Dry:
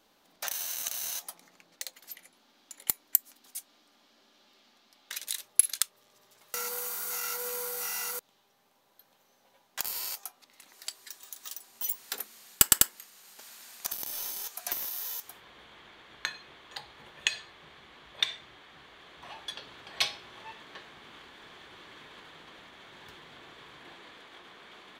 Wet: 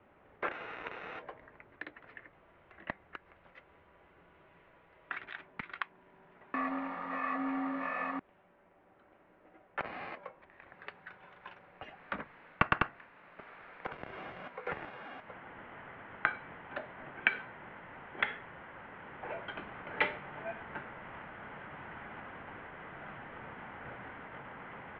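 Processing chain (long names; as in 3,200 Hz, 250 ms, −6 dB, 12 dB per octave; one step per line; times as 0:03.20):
single-sideband voice off tune −220 Hz 300–2,400 Hz
level +6 dB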